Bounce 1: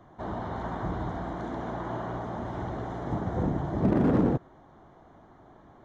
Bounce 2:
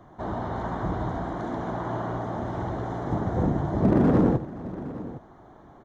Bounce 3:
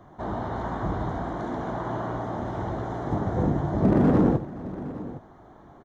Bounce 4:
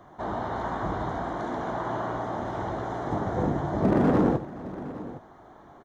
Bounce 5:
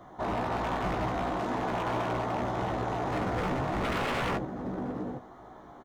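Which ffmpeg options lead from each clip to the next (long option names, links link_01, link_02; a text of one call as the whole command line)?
ffmpeg -i in.wav -filter_complex "[0:a]equalizer=frequency=2700:width=1.2:gain=-3,asplit=2[link_01][link_02];[link_02]aecho=0:1:76|518|812:0.211|0.112|0.158[link_03];[link_01][link_03]amix=inputs=2:normalize=0,volume=3.5dB" out.wav
ffmpeg -i in.wav -filter_complex "[0:a]asplit=2[link_01][link_02];[link_02]adelay=20,volume=-12dB[link_03];[link_01][link_03]amix=inputs=2:normalize=0" out.wav
ffmpeg -i in.wav -af "lowshelf=frequency=320:gain=-8,volume=2.5dB" out.wav
ffmpeg -i in.wav -filter_complex "[0:a]aeval=exprs='0.0501*(abs(mod(val(0)/0.0501+3,4)-2)-1)':channel_layout=same,bandreject=frequency=1600:width=22,asplit=2[link_01][link_02];[link_02]adelay=16,volume=-5dB[link_03];[link_01][link_03]amix=inputs=2:normalize=0" out.wav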